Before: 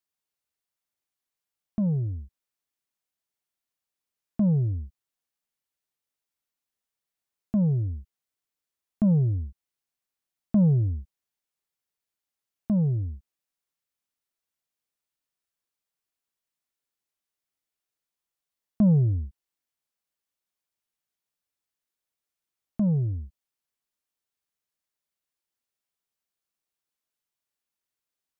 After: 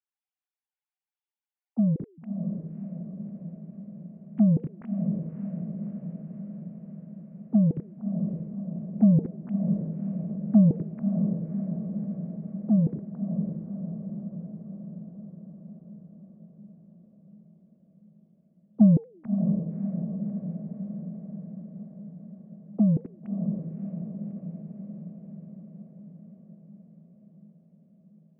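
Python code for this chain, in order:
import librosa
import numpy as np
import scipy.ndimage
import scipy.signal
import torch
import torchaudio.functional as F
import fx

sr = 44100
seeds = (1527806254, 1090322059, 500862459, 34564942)

y = fx.sine_speech(x, sr)
y = fx.dynamic_eq(y, sr, hz=620.0, q=1.2, threshold_db=-39.0, ratio=4.0, max_db=4)
y = fx.echo_diffused(y, sr, ms=604, feedback_pct=66, wet_db=-6)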